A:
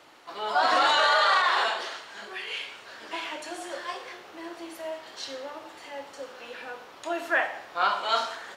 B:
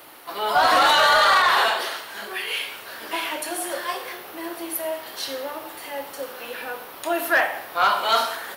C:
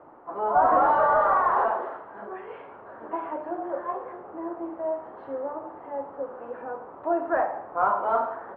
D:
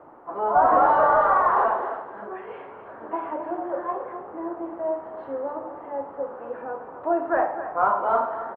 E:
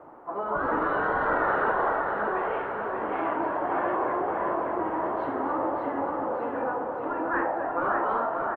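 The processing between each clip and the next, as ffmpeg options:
-filter_complex "[0:a]acrossover=split=1400[a][b];[b]aexciter=amount=10:drive=5.8:freq=10k[c];[a][c]amix=inputs=2:normalize=0,asoftclip=type=tanh:threshold=-16.5dB,volume=7dB"
-af "lowpass=f=1.1k:w=0.5412,lowpass=f=1.1k:w=1.3066"
-af "aecho=1:1:262:0.266,volume=2dB"
-af "dynaudnorm=f=240:g=17:m=10dB,afftfilt=real='re*lt(hypot(re,im),0.398)':imag='im*lt(hypot(re,im),0.398)':win_size=1024:overlap=0.75,aecho=1:1:584|1168|1752|2336|2920|3504|4088:0.562|0.304|0.164|0.0885|0.0478|0.0258|0.0139"

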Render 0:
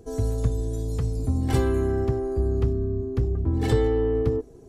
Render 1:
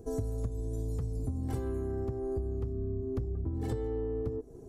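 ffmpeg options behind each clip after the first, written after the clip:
-af "equalizer=f=2.9k:w=0.57:g=-10,acompressor=threshold=-30dB:ratio=12"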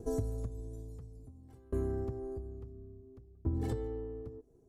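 -af "aeval=exprs='val(0)*pow(10,-28*if(lt(mod(0.58*n/s,1),2*abs(0.58)/1000),1-mod(0.58*n/s,1)/(2*abs(0.58)/1000),(mod(0.58*n/s,1)-2*abs(0.58)/1000)/(1-2*abs(0.58)/1000))/20)':c=same,volume=2.5dB"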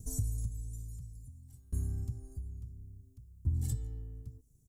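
-af "firequalizer=gain_entry='entry(140,0);entry(370,-25);entry(2900,-8);entry(7200,10)':delay=0.05:min_phase=1,volume=3dB"

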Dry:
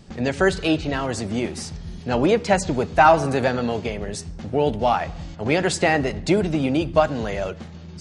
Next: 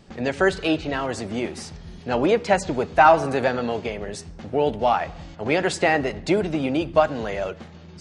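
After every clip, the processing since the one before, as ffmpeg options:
-af "bass=f=250:g=-6,treble=f=4k:g=-5"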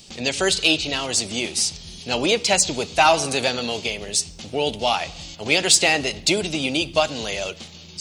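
-af "aexciter=amount=5.2:drive=8.2:freq=2.5k,volume=-2.5dB"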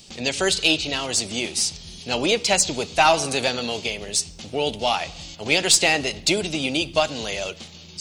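-af "aeval=exprs='0.891*(cos(1*acos(clip(val(0)/0.891,-1,1)))-cos(1*PI/2))+0.0794*(cos(2*acos(clip(val(0)/0.891,-1,1)))-cos(2*PI/2))':c=same,volume=-1dB"

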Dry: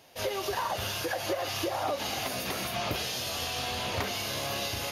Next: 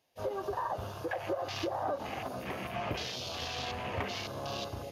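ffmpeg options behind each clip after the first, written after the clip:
-af "bandreject=f=1.4k:w=14,afwtdn=0.0178,volume=-2.5dB"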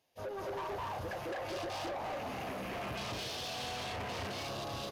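-filter_complex "[0:a]asplit=2[a][b];[b]aecho=0:1:212.8|247.8:1|0.708[c];[a][c]amix=inputs=2:normalize=0,asoftclip=type=tanh:threshold=-34.5dB,volume=-1.5dB"

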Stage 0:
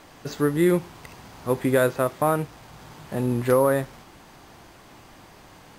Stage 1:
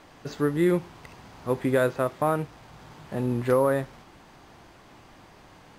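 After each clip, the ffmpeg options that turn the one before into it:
-af "highshelf=f=8k:g=-10,volume=-2.5dB"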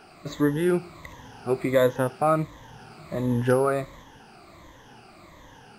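-af "afftfilt=real='re*pow(10,14/40*sin(2*PI*(1.1*log(max(b,1)*sr/1024/100)/log(2)-(-1.4)*(pts-256)/sr)))':imag='im*pow(10,14/40*sin(2*PI*(1.1*log(max(b,1)*sr/1024/100)/log(2)-(-1.4)*(pts-256)/sr)))':win_size=1024:overlap=0.75"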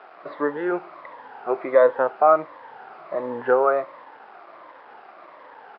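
-af "aresample=11025,acrusher=bits=7:mix=0:aa=0.000001,aresample=44100,asuperpass=centerf=870:order=4:qfactor=0.82,volume=7dB"

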